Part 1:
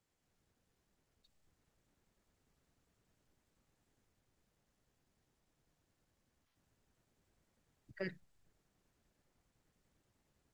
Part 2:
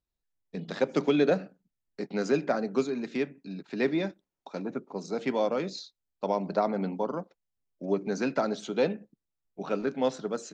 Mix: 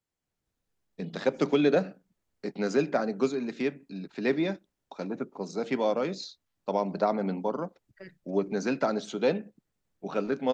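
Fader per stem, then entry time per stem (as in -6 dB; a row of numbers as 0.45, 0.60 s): -5.5, +0.5 dB; 0.00, 0.45 s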